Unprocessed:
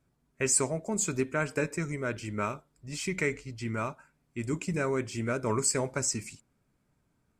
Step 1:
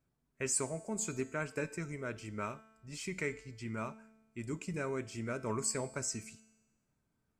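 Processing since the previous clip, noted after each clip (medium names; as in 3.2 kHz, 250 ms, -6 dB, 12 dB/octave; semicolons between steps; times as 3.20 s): feedback comb 220 Hz, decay 1.1 s, mix 60%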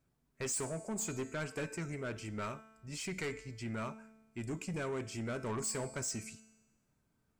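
saturation -36 dBFS, distortion -10 dB; trim +3 dB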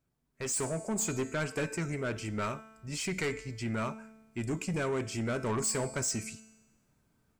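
level rider gain up to 9 dB; trim -3 dB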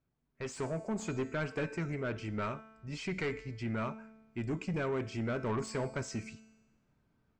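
distance through air 160 m; trim -1.5 dB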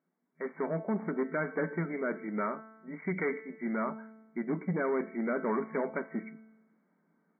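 FFT band-pass 160–2300 Hz; trim +4 dB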